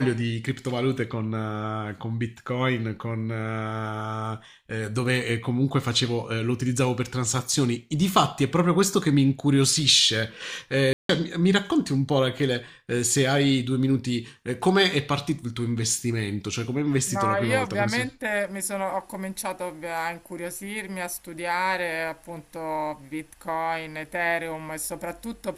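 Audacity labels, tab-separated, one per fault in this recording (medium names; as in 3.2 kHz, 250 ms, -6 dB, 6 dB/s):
10.930000	11.090000	dropout 163 ms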